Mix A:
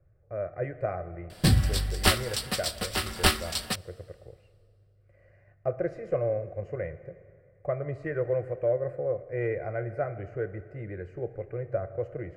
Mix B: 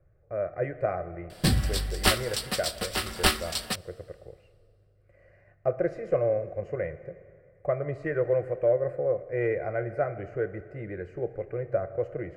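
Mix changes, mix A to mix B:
speech +3.0 dB; master: add bell 98 Hz -5.5 dB 0.97 oct

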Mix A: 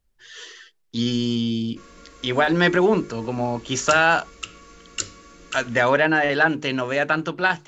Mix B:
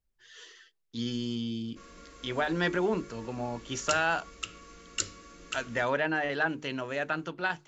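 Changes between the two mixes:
speech -10.5 dB; background -4.0 dB

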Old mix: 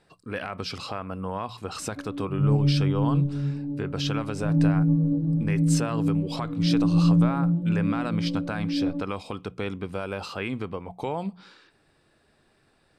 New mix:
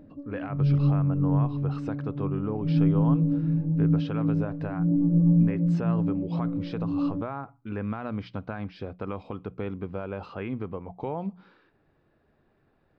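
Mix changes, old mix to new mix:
background: entry -1.80 s; master: add tape spacing loss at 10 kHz 42 dB

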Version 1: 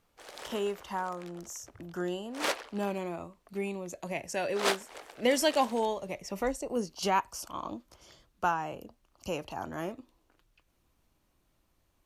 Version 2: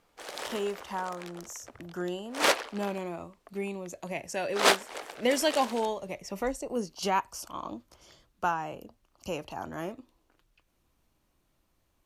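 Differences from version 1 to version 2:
background +7.0 dB; master: add notches 50/100 Hz

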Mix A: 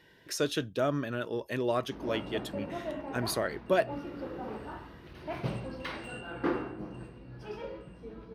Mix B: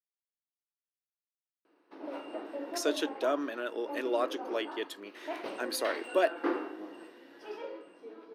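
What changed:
speech: entry +2.45 s; master: add Chebyshev high-pass 290 Hz, order 4

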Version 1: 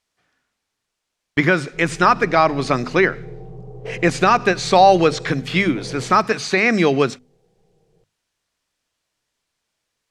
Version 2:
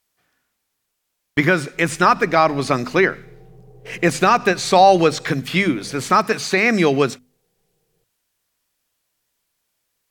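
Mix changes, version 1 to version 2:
background -9.0 dB; master: remove LPF 7200 Hz 12 dB/oct

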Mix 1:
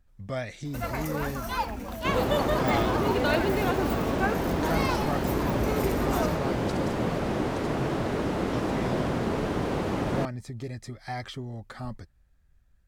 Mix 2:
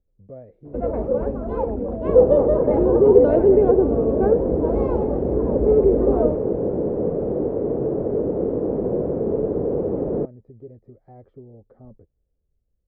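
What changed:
speech -10.0 dB; first sound +7.0 dB; master: add synth low-pass 470 Hz, resonance Q 4

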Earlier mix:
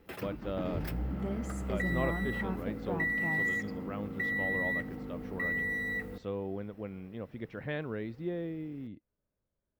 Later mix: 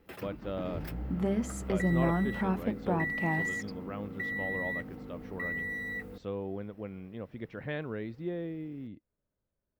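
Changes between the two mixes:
second sound +10.5 dB; reverb: off

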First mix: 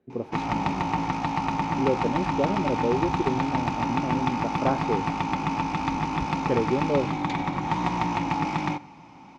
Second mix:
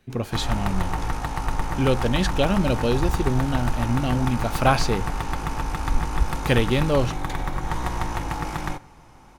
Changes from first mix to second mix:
speech: remove band-pass 380 Hz, Q 1.4; background: remove speaker cabinet 130–5800 Hz, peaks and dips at 180 Hz +9 dB, 280 Hz +9 dB, 460 Hz -5 dB, 890 Hz +6 dB, 1600 Hz -7 dB, 2400 Hz +8 dB

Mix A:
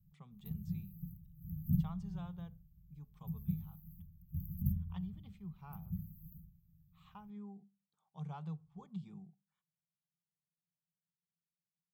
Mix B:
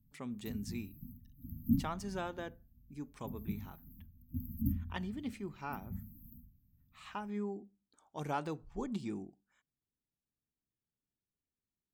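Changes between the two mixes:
speech: remove speaker cabinet 210–5800 Hz, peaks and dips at 440 Hz +5 dB, 770 Hz +9 dB, 1100 Hz +8 dB, 1700 Hz -5 dB, 3400 Hz +9 dB; master: remove EQ curve 120 Hz 0 dB, 170 Hz +12 dB, 260 Hz -28 dB, 400 Hz -23 dB, 580 Hz -22 dB, 1300 Hz -18 dB, 5500 Hz -20 dB, 10000 Hz -2 dB

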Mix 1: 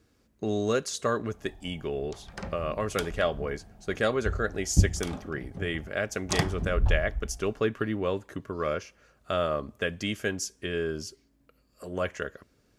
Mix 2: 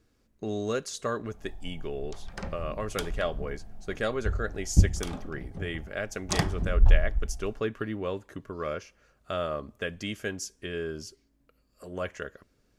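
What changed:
speech -3.5 dB; master: remove HPF 49 Hz

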